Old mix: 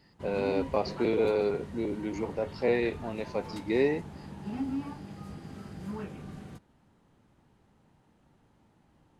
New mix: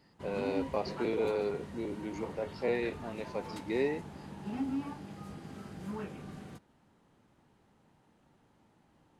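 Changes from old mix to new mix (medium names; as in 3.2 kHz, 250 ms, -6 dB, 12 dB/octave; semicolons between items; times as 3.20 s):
speech -4.5 dB; master: add bass shelf 130 Hz -7.5 dB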